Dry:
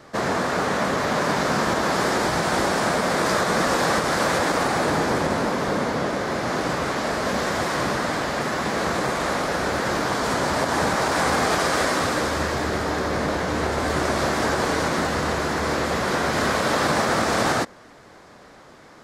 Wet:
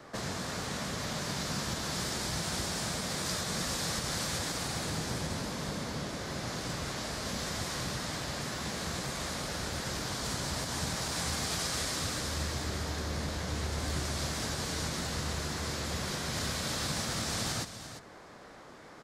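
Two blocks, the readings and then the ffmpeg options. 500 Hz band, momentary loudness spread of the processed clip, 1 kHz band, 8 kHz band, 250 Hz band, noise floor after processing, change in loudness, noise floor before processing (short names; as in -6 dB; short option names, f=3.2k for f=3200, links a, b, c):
-17.5 dB, 4 LU, -17.5 dB, -4.0 dB, -13.0 dB, -51 dBFS, -11.5 dB, -47 dBFS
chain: -filter_complex "[0:a]acrossover=split=160|3000[a][b][c];[b]acompressor=threshold=-36dB:ratio=6[d];[a][d][c]amix=inputs=3:normalize=0,asplit=2[e][f];[f]aecho=0:1:346:0.266[g];[e][g]amix=inputs=2:normalize=0,volume=-4dB"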